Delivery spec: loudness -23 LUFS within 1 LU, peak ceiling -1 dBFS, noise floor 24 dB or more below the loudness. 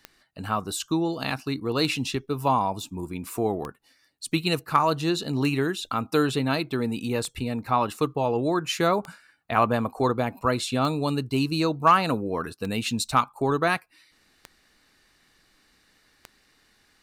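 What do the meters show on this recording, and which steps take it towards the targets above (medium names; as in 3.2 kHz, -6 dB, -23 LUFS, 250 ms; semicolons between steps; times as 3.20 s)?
clicks found 10; loudness -25.5 LUFS; peak level -7.5 dBFS; loudness target -23.0 LUFS
-> de-click; trim +2.5 dB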